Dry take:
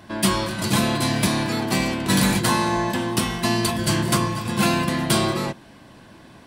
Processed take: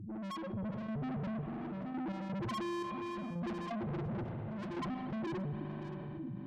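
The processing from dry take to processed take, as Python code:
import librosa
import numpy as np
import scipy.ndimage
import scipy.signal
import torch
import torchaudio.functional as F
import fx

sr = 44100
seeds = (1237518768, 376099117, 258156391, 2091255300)

y = scipy.signal.sosfilt(scipy.signal.butter(4, 61.0, 'highpass', fs=sr, output='sos'), x)
y = fx.high_shelf(y, sr, hz=3100.0, db=-8.5)
y = fx.notch_comb(y, sr, f0_hz=450.0)
y = fx.spec_topn(y, sr, count=1)
y = fx.small_body(y, sr, hz=(350.0, 1200.0, 1800.0, 2600.0), ring_ms=45, db=6)
y = fx.tube_stage(y, sr, drive_db=45.0, bias=0.25)
y = fx.step_gate(y, sr, bpm=85, pattern='...x.xxx', floor_db=-12.0, edge_ms=4.5)
y = y + 10.0 ** (-22.0 / 20.0) * np.pad(y, (int(572 * sr / 1000.0), 0))[:len(y)]
y = fx.rev_spring(y, sr, rt60_s=2.6, pass_ms=(40,), chirp_ms=40, drr_db=10.5)
y = fx.env_flatten(y, sr, amount_pct=70)
y = y * librosa.db_to_amplitude(7.0)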